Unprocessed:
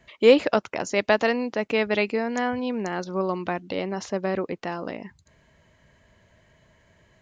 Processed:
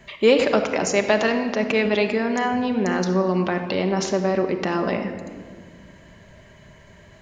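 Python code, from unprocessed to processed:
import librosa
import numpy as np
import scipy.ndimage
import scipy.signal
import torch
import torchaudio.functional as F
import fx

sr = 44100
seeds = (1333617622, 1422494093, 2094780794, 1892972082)

p1 = fx.over_compress(x, sr, threshold_db=-33.0, ratio=-1.0)
p2 = x + (p1 * 10.0 ** (-2.0 / 20.0))
y = fx.room_shoebox(p2, sr, seeds[0], volume_m3=2800.0, walls='mixed', distance_m=1.2)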